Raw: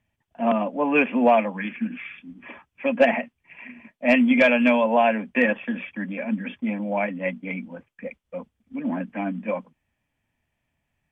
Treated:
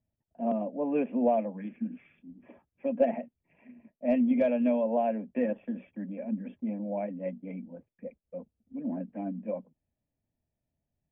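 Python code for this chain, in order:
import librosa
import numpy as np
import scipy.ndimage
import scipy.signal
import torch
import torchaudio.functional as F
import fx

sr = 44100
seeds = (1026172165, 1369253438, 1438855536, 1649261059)

y = fx.curve_eq(x, sr, hz=(630.0, 1100.0, 2500.0), db=(0, -15, -18))
y = y * 10.0 ** (-6.5 / 20.0)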